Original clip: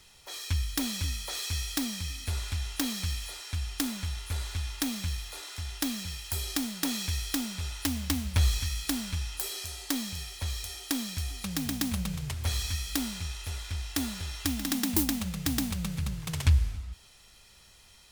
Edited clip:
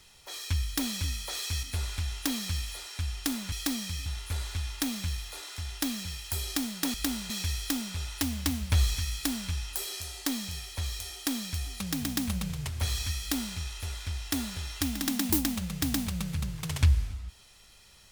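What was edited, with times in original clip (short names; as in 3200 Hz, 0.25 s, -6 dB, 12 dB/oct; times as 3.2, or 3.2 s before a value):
1.63–2.17 move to 4.06
12.85–13.21 copy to 6.94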